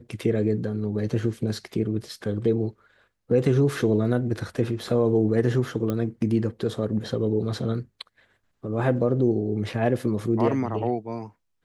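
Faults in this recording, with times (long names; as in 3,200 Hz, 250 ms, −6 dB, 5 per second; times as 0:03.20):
0:05.90: click −15 dBFS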